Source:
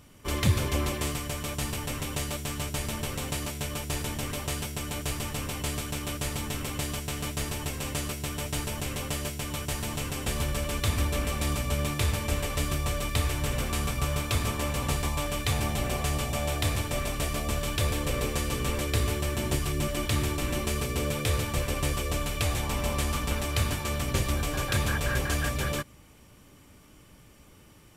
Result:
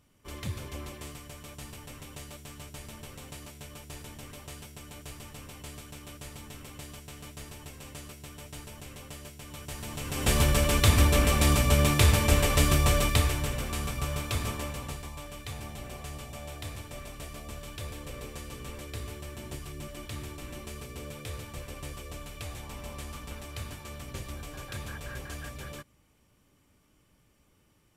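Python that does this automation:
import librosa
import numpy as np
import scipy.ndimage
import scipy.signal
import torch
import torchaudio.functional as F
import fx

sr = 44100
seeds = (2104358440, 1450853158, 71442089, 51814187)

y = fx.gain(x, sr, db=fx.line((9.37, -12.0), (10.04, -4.0), (10.3, 6.0), (12.99, 6.0), (13.57, -3.5), (14.52, -3.5), (15.05, -12.0)))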